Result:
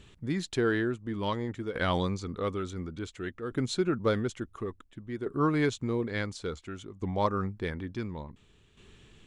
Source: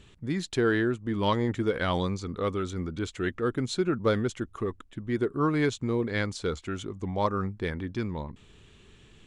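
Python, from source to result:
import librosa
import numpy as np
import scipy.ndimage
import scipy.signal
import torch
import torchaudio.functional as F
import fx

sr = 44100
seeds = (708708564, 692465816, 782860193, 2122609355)

y = fx.tremolo_shape(x, sr, shape='saw_down', hz=0.57, depth_pct=65)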